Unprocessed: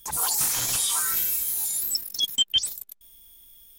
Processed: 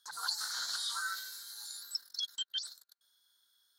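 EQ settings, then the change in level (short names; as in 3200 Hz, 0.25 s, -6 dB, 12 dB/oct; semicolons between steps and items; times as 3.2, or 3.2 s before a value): double band-pass 2500 Hz, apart 1.5 oct; +2.0 dB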